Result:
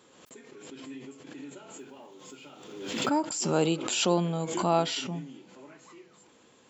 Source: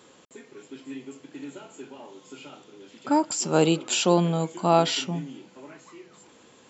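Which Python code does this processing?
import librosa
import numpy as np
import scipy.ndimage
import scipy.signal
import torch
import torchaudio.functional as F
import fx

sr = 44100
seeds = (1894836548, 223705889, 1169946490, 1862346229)

y = fx.block_float(x, sr, bits=7, at=(1.77, 3.08), fade=0.02)
y = fx.pre_swell(y, sr, db_per_s=48.0)
y = y * librosa.db_to_amplitude(-5.5)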